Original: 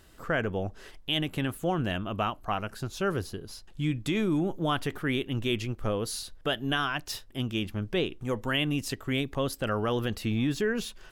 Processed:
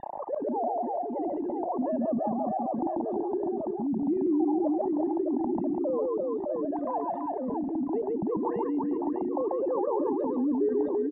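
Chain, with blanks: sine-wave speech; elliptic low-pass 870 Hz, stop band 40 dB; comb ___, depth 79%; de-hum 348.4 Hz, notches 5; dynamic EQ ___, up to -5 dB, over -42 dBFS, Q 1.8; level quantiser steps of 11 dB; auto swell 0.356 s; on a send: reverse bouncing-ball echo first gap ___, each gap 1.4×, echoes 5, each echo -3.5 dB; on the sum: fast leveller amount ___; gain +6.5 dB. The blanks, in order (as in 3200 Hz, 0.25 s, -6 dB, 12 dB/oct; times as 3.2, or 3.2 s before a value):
1.1 ms, 240 Hz, 0.14 s, 70%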